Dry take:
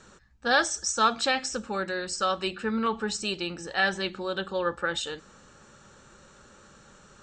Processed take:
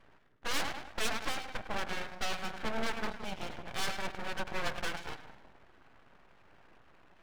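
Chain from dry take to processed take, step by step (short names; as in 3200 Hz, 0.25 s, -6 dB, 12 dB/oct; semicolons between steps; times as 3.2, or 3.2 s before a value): in parallel at -2 dB: compressor, threshold -37 dBFS, peak gain reduction 18.5 dB; on the sum: Gaussian blur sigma 3.7 samples; on a send: split-band echo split 440 Hz, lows 0.175 s, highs 0.103 s, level -8.5 dB; on the sum: added harmonics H 8 -8 dB, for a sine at -12 dBFS; notch comb 770 Hz; full-wave rectifier; gain -8.5 dB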